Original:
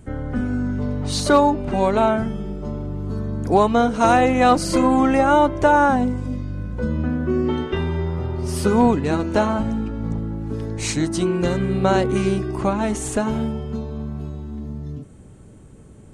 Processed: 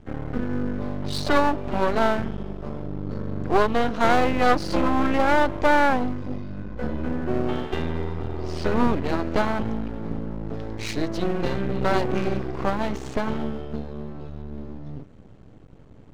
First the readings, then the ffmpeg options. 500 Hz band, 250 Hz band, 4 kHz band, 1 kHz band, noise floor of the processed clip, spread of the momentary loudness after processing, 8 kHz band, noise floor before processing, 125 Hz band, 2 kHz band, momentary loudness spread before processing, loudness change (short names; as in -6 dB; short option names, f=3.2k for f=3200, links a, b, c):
-4.5 dB, -5.5 dB, -3.0 dB, -4.5 dB, -46 dBFS, 14 LU, -12.5 dB, -44 dBFS, -6.0 dB, -0.5 dB, 13 LU, -4.5 dB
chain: -af "lowpass=f=5k:w=0.5412,lowpass=f=5k:w=1.3066,aeval=exprs='max(val(0),0)':c=same"